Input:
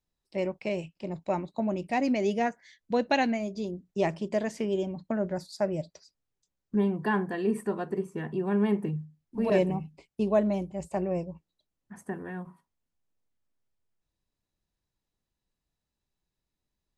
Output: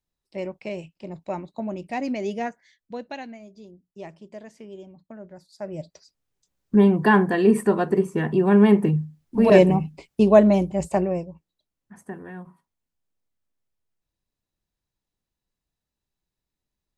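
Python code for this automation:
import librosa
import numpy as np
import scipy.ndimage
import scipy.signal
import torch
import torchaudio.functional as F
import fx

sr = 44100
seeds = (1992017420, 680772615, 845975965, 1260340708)

y = fx.gain(x, sr, db=fx.line((2.47, -1.0), (3.26, -12.0), (5.46, -12.0), (5.81, 0.0), (6.86, 10.5), (10.9, 10.5), (11.31, -0.5)))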